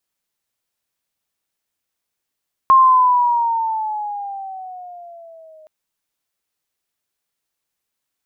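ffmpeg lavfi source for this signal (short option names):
-f lavfi -i "aevalsrc='pow(10,(-6-35.5*t/2.97)/20)*sin(2*PI*1070*2.97/(-9.5*log(2)/12)*(exp(-9.5*log(2)/12*t/2.97)-1))':d=2.97:s=44100"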